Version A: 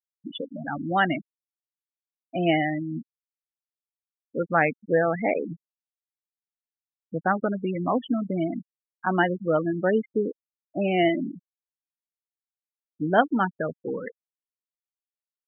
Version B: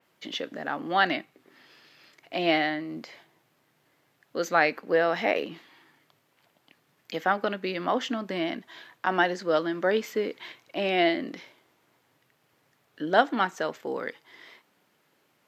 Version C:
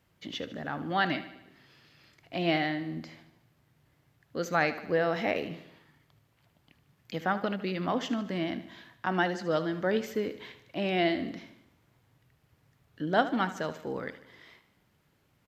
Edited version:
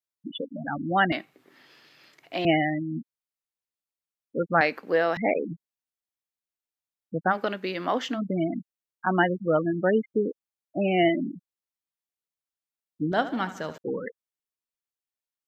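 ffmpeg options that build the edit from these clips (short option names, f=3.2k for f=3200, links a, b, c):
-filter_complex "[1:a]asplit=3[a][b][c];[0:a]asplit=5[d][e][f][g][h];[d]atrim=end=1.122[i];[a]atrim=start=1.118:end=2.452[j];[e]atrim=start=2.448:end=4.612[k];[b]atrim=start=4.608:end=5.172[l];[f]atrim=start=5.168:end=7.35[m];[c]atrim=start=7.29:end=8.2[n];[g]atrim=start=8.14:end=13.122[o];[2:a]atrim=start=13.118:end=13.782[p];[h]atrim=start=13.778[q];[i][j]acrossfade=d=0.004:c1=hsin:c2=hsin[r];[r][k]acrossfade=d=0.004:c1=hsin:c2=hsin[s];[s][l]acrossfade=d=0.004:c1=hsin:c2=hsin[t];[t][m]acrossfade=d=0.004:c1=hsin:c2=hsin[u];[u][n]acrossfade=d=0.06:c1=tri:c2=tri[v];[v][o]acrossfade=d=0.06:c1=tri:c2=tri[w];[w][p]acrossfade=d=0.004:c1=hsin:c2=hsin[x];[x][q]acrossfade=d=0.004:c1=hsin:c2=hsin"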